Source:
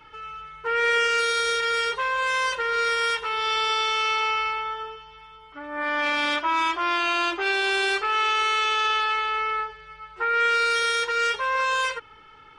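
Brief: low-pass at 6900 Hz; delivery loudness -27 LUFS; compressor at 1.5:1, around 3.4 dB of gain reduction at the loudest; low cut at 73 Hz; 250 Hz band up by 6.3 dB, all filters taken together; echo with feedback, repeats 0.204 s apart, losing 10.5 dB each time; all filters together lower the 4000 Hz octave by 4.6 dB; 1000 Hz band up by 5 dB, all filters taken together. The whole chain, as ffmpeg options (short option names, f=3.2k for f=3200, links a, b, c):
-af "highpass=73,lowpass=6.9k,equalizer=f=250:t=o:g=9,equalizer=f=1k:t=o:g=7,equalizer=f=4k:t=o:g=-6.5,acompressor=threshold=-25dB:ratio=1.5,aecho=1:1:204|408|612:0.299|0.0896|0.0269,volume=-4dB"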